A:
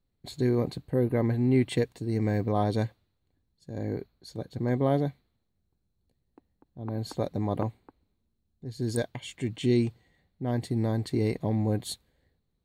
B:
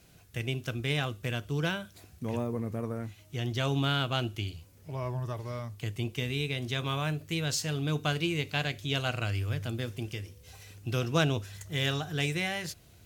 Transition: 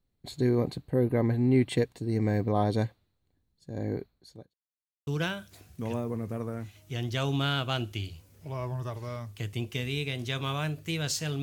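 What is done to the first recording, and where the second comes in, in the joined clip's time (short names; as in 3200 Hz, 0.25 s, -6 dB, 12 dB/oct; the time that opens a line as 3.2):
A
3.98–4.54 fade out linear
4.54–5.07 mute
5.07 switch to B from 1.5 s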